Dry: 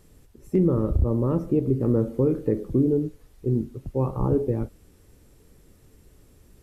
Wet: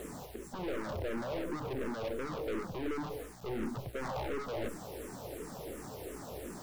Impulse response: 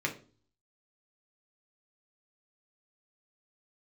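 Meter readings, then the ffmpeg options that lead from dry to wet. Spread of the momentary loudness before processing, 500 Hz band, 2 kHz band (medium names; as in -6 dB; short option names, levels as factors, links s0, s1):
7 LU, -11.5 dB, no reading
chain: -filter_complex "[0:a]highpass=150,equalizer=f=710:w=0.8:g=13.5,alimiter=limit=0.224:level=0:latency=1,areverse,acompressor=threshold=0.0251:ratio=12,areverse,aeval=exprs='(tanh(251*val(0)+0.4)-tanh(0.4))/251':c=same,aeval=exprs='val(0)+0.000501*(sin(2*PI*60*n/s)+sin(2*PI*2*60*n/s)/2+sin(2*PI*3*60*n/s)/3+sin(2*PI*4*60*n/s)/4+sin(2*PI*5*60*n/s)/5)':c=same,acrusher=bits=10:mix=0:aa=0.000001,asplit=2[s0][s1];[s1]afreqshift=-2.8[s2];[s0][s2]amix=inputs=2:normalize=1,volume=5.62"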